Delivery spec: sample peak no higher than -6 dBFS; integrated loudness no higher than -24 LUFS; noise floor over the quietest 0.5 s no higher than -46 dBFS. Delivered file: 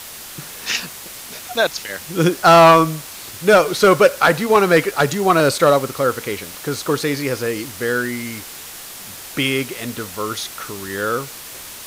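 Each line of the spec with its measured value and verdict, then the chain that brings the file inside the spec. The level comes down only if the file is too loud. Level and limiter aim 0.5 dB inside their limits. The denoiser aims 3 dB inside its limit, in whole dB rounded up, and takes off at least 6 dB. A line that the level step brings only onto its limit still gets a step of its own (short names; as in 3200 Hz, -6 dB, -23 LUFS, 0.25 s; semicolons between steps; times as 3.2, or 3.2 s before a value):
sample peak -3.5 dBFS: fail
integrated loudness -17.0 LUFS: fail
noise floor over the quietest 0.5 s -35 dBFS: fail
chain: denoiser 7 dB, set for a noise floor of -35 dBFS; gain -7.5 dB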